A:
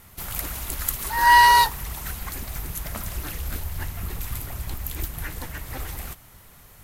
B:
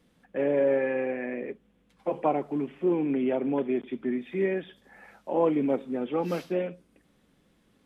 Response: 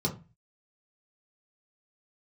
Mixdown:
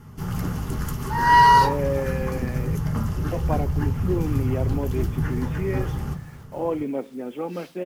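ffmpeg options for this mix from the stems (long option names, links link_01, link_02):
-filter_complex "[0:a]lowpass=frequency=1900:poles=1,volume=1.5dB,asplit=2[link_01][link_02];[link_02]volume=-5.5dB[link_03];[1:a]acrusher=bits=8:mix=0:aa=0.000001,adelay=1250,volume=-2dB[link_04];[2:a]atrim=start_sample=2205[link_05];[link_03][link_05]afir=irnorm=-1:irlink=0[link_06];[link_01][link_04][link_06]amix=inputs=3:normalize=0"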